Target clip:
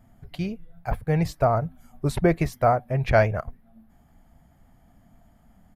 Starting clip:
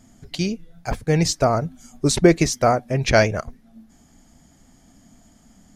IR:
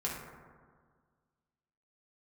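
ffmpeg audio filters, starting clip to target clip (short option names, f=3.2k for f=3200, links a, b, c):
-af "firequalizer=gain_entry='entry(110,0);entry(270,-10);entry(690,-1);entry(6200,-23);entry(12000,-3)':delay=0.05:min_phase=1"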